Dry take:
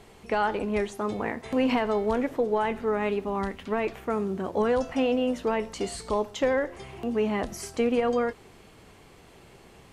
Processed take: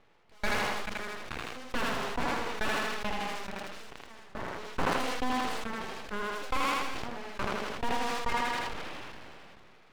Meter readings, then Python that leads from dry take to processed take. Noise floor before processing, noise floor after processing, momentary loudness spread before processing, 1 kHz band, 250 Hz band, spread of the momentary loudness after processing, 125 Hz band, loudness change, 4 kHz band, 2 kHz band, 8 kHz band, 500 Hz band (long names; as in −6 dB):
−53 dBFS, −56 dBFS, 6 LU, −2.0 dB, −10.5 dB, 13 LU, −5.0 dB, −6.0 dB, +3.0 dB, +1.5 dB, −0.5 dB, −12.5 dB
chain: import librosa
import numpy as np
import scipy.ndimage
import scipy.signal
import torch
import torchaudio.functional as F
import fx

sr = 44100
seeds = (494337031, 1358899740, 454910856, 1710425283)

y = fx.reverse_delay(x, sr, ms=224, wet_db=-7.0)
y = scipy.signal.sosfilt(scipy.signal.butter(4, 2800.0, 'lowpass', fs=sr, output='sos'), y)
y = fx.low_shelf(y, sr, hz=190.0, db=-5.5)
y = fx.hum_notches(y, sr, base_hz=50, count=5)
y = fx.transient(y, sr, attack_db=-6, sustain_db=2)
y = 10.0 ** (-27.0 / 20.0) * np.tanh(y / 10.0 ** (-27.0 / 20.0))
y = fx.tremolo_shape(y, sr, shape='saw_down', hz=2.3, depth_pct=80)
y = fx.cheby_harmonics(y, sr, harmonics=(2, 3, 7), levels_db=(-13, -8, -43), full_scale_db=-27.0)
y = np.abs(y)
y = fx.echo_thinned(y, sr, ms=80, feedback_pct=35, hz=230.0, wet_db=-3.5)
y = fx.sustainer(y, sr, db_per_s=20.0)
y = y * librosa.db_to_amplitude(4.0)